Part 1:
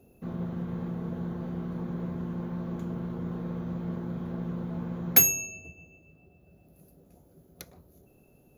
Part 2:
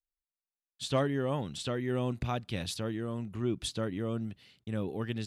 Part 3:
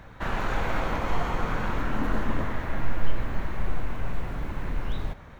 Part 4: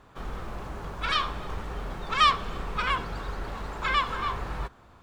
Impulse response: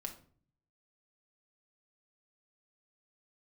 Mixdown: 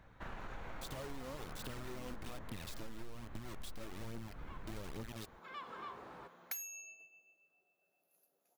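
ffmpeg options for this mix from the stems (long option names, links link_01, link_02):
-filter_complex "[0:a]asoftclip=type=tanh:threshold=-13.5dB,highpass=910,adelay=1350,volume=-9.5dB[link_01];[1:a]alimiter=level_in=3.5dB:limit=-24dB:level=0:latency=1:release=83,volume=-3.5dB,acrusher=bits=5:mix=0:aa=0.000001,aphaser=in_gain=1:out_gain=1:delay=4.2:decay=0.47:speed=1.2:type=triangular,volume=-5dB,asplit=2[link_02][link_03];[2:a]volume=-14.5dB[link_04];[3:a]highpass=270,tiltshelf=frequency=970:gain=4.5,adelay=1600,volume=-15dB[link_05];[link_03]apad=whole_len=292126[link_06];[link_05][link_06]sidechaincompress=threshold=-56dB:ratio=8:attack=16:release=390[link_07];[link_01][link_02][link_04][link_07]amix=inputs=4:normalize=0,acompressor=threshold=-42dB:ratio=5"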